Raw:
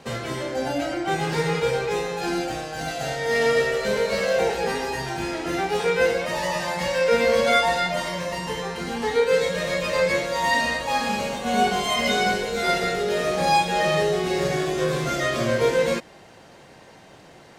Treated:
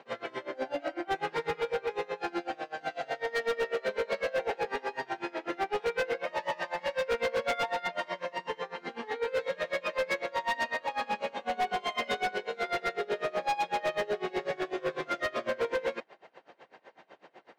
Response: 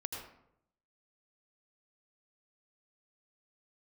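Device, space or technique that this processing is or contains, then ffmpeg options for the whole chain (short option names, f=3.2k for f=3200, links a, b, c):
helicopter radio: -af "highpass=380,lowpass=2.7k,aeval=exprs='val(0)*pow(10,-25*(0.5-0.5*cos(2*PI*8*n/s))/20)':c=same,asoftclip=type=hard:threshold=-25dB"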